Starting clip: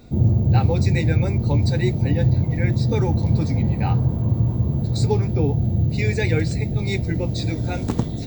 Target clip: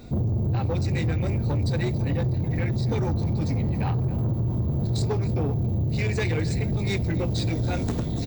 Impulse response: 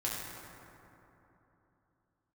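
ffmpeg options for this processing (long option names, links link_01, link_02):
-filter_complex "[0:a]acompressor=threshold=-19dB:ratio=6,asplit=2[link_01][link_02];[link_02]aecho=0:1:278:0.119[link_03];[link_01][link_03]amix=inputs=2:normalize=0,asoftclip=type=tanh:threshold=-22.5dB,volume=2.5dB"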